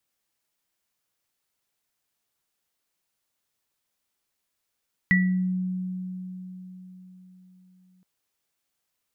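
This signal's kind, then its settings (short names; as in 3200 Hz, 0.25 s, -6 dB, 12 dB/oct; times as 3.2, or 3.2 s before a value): sine partials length 2.92 s, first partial 184 Hz, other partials 1950 Hz, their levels 3 dB, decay 4.40 s, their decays 0.40 s, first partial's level -18 dB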